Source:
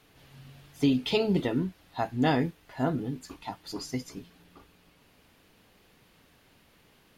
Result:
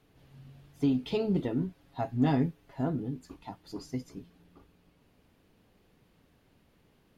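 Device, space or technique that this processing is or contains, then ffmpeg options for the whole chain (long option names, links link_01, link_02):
parallel distortion: -filter_complex "[0:a]tiltshelf=frequency=760:gain=5,asettb=1/sr,asplit=3[link_01][link_02][link_03];[link_01]atrim=end=1.604[link_04];[link_02]atrim=start=1.6:end=2.81,asetpts=PTS-STARTPTS,afade=type=in:duration=0.004:curve=qsin,afade=type=out:start_time=1.206:duration=0.004:curve=qsin,aecho=1:1:7.3:0.62,atrim=end_sample=53361[link_05];[link_03]atrim=start=2.806[link_06];[link_04][link_05]acrossfade=duration=0.004:curve1=hsin:curve2=qsin[link_07];[link_07][link_06]acrossfade=duration=0.004:curve1=qsin:curve2=hsin,asplit=2[link_08][link_09];[link_09]asoftclip=type=hard:threshold=-21.5dB,volume=-13dB[link_10];[link_08][link_10]amix=inputs=2:normalize=0,volume=-7.5dB"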